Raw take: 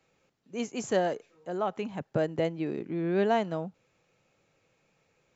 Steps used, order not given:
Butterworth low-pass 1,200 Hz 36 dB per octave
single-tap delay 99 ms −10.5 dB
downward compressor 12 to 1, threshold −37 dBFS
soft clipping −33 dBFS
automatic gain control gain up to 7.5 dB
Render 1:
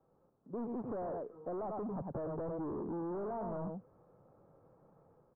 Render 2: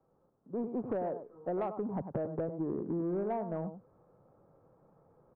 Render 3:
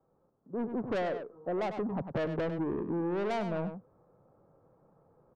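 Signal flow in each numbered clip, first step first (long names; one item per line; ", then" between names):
automatic gain control, then single-tap delay, then soft clipping, then Butterworth low-pass, then downward compressor
Butterworth low-pass, then downward compressor, then single-tap delay, then soft clipping, then automatic gain control
Butterworth low-pass, then soft clipping, then single-tap delay, then downward compressor, then automatic gain control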